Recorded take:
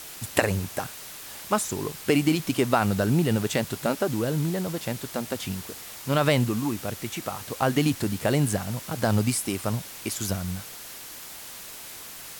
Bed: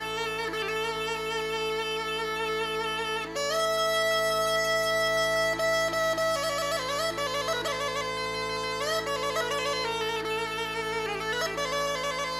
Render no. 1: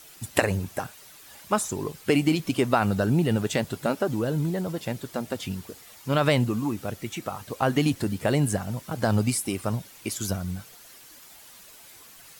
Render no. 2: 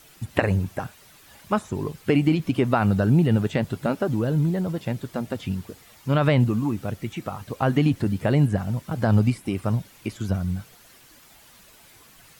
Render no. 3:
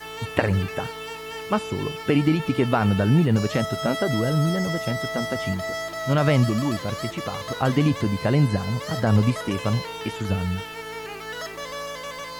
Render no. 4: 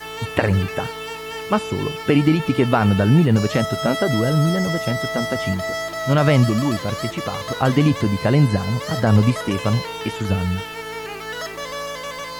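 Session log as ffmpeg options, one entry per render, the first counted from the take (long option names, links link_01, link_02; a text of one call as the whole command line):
ffmpeg -i in.wav -af "afftdn=noise_reduction=10:noise_floor=-41" out.wav
ffmpeg -i in.wav -filter_complex "[0:a]acrossover=split=3500[link_01][link_02];[link_02]acompressor=threshold=-43dB:ratio=4:attack=1:release=60[link_03];[link_01][link_03]amix=inputs=2:normalize=0,bass=frequency=250:gain=6,treble=frequency=4000:gain=-4" out.wav
ffmpeg -i in.wav -i bed.wav -filter_complex "[1:a]volume=-4dB[link_01];[0:a][link_01]amix=inputs=2:normalize=0" out.wav
ffmpeg -i in.wav -af "volume=4dB,alimiter=limit=-2dB:level=0:latency=1" out.wav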